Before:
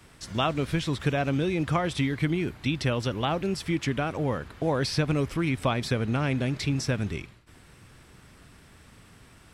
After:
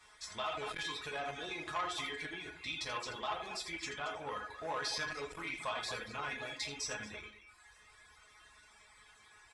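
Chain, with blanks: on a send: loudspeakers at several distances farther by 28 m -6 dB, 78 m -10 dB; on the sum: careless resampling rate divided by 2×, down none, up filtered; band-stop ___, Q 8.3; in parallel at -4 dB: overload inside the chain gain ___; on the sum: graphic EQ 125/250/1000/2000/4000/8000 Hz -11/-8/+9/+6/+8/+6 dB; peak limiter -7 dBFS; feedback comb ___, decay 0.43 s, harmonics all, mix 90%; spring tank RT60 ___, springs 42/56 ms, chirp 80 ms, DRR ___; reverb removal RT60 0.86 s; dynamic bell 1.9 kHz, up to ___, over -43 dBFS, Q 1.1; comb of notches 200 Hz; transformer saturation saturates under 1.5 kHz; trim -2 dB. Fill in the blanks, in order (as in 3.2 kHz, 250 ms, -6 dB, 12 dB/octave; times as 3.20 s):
2.9 kHz, 17 dB, 210 Hz, 1 s, 4.5 dB, -3 dB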